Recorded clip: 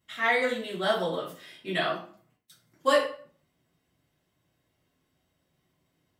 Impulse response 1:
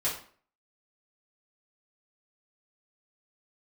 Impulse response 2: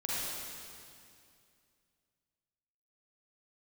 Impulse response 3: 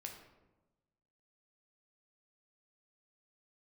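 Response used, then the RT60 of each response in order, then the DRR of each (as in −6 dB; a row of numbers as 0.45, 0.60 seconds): 1; 0.50, 2.4, 1.1 seconds; −9.0, −7.5, 1.5 decibels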